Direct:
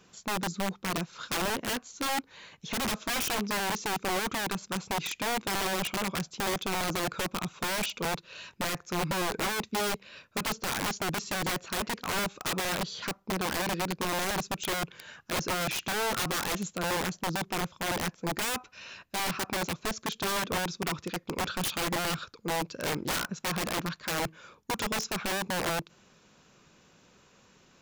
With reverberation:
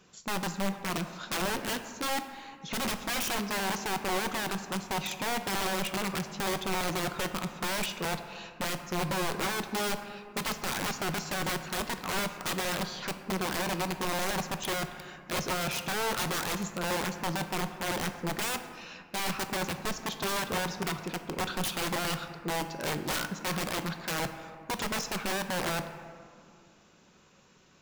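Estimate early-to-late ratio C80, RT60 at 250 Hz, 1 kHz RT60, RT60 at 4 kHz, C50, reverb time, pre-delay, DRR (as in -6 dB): 10.5 dB, 2.7 s, 2.3 s, 1.1 s, 9.5 dB, 2.3 s, 5 ms, 8.0 dB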